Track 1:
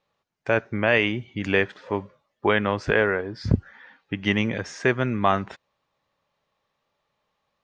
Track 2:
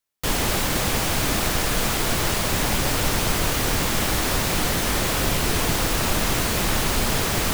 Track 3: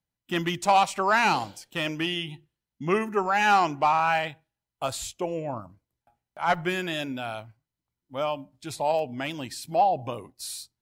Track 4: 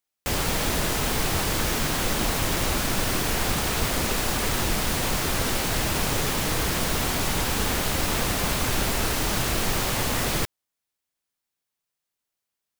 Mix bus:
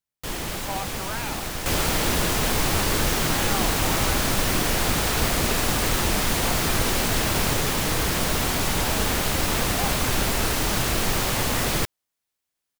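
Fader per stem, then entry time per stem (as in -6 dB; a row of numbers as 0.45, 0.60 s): off, -8.0 dB, -13.0 dB, +1.5 dB; off, 0.00 s, 0.00 s, 1.40 s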